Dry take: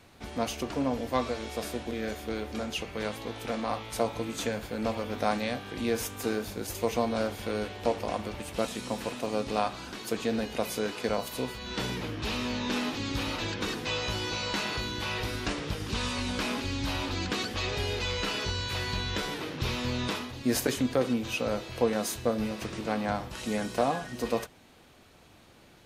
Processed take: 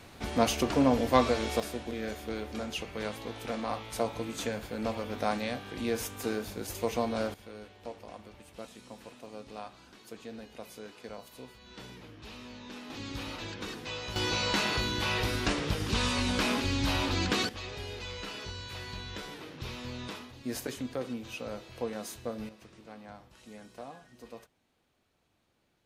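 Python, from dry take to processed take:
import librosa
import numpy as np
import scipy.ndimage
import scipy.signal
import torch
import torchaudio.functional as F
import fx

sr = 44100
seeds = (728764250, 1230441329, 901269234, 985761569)

y = fx.gain(x, sr, db=fx.steps((0.0, 5.0), (1.6, -2.5), (7.34, -14.5), (12.9, -7.0), (14.16, 2.5), (17.49, -9.0), (22.49, -18.0)))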